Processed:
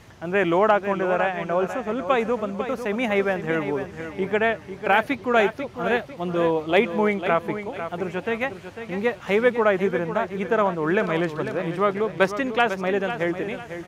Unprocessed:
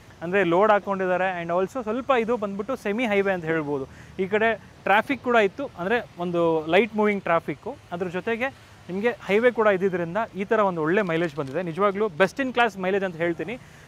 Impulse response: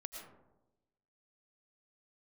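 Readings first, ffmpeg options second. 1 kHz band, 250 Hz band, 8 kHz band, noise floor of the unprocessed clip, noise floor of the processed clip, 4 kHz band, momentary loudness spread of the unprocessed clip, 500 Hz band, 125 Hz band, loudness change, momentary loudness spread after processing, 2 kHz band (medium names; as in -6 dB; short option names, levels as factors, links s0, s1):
+0.5 dB, +0.5 dB, no reading, -49 dBFS, -42 dBFS, +0.5 dB, 9 LU, +0.5 dB, +0.5 dB, +0.5 dB, 8 LU, +0.5 dB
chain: -af "aecho=1:1:498|996|1494|1992:0.316|0.108|0.0366|0.0124"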